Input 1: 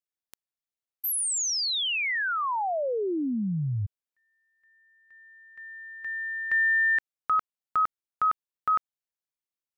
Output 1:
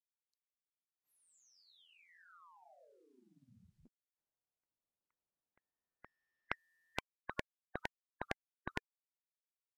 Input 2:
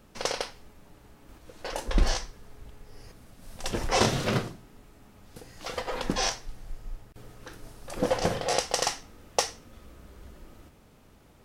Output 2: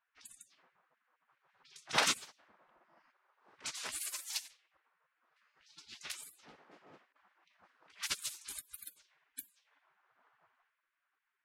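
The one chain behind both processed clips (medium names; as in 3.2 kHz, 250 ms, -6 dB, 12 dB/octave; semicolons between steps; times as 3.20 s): level-controlled noise filter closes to 710 Hz, open at -24 dBFS; spectral gate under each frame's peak -30 dB weak; upward expansion 1.5:1, over -60 dBFS; trim +11 dB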